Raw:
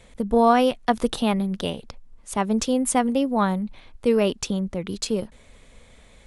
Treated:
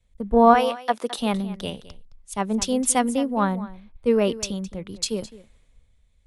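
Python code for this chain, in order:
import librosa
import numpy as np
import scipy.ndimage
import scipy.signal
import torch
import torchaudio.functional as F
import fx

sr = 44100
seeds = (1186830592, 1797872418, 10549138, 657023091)

y = fx.highpass(x, sr, hz=fx.line((0.53, 610.0), (1.18, 290.0)), slope=12, at=(0.53, 1.18), fade=0.02)
y = y + 10.0 ** (-13.5 / 20.0) * np.pad(y, (int(215 * sr / 1000.0), 0))[:len(y)]
y = fx.band_widen(y, sr, depth_pct=70)
y = F.gain(torch.from_numpy(y), -1.5).numpy()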